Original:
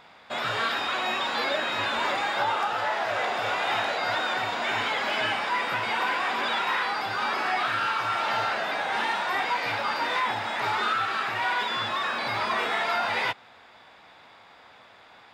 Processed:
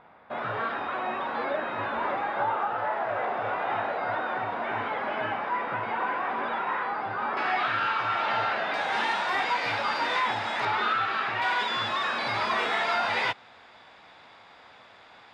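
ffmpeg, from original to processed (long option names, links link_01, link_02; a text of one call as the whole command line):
ffmpeg -i in.wav -af "asetnsamples=nb_out_samples=441:pad=0,asendcmd='7.37 lowpass f 3400;8.74 lowpass f 8200;10.65 lowpass f 3800;11.42 lowpass f 8200',lowpass=1400" out.wav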